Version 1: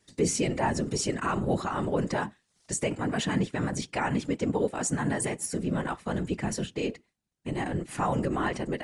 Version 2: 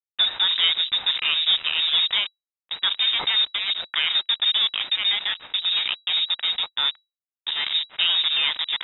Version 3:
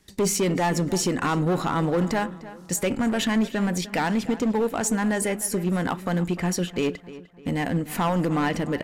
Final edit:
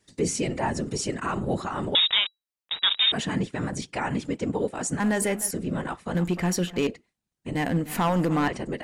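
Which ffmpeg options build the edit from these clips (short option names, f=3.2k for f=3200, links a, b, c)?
-filter_complex "[2:a]asplit=3[a][b][c];[0:a]asplit=5[d][e][f][g][h];[d]atrim=end=1.952[i];[1:a]atrim=start=1.948:end=3.122[j];[e]atrim=start=3.118:end=5.002[k];[a]atrim=start=4.998:end=5.512[l];[f]atrim=start=5.508:end=6.152[m];[b]atrim=start=6.148:end=6.872[n];[g]atrim=start=6.868:end=7.552[o];[c]atrim=start=7.548:end=8.482[p];[h]atrim=start=8.478[q];[i][j]acrossfade=d=0.004:c1=hsin:c2=hsin[r];[r][k]acrossfade=d=0.004:c1=hsin:c2=hsin[s];[s][l]acrossfade=d=0.004:c1=hsin:c2=hsin[t];[t][m]acrossfade=d=0.004:c1=hsin:c2=hsin[u];[u][n]acrossfade=d=0.004:c1=hsin:c2=hsin[v];[v][o]acrossfade=d=0.004:c1=hsin:c2=hsin[w];[w][p]acrossfade=d=0.004:c1=hsin:c2=hsin[x];[x][q]acrossfade=d=0.004:c1=hsin:c2=hsin"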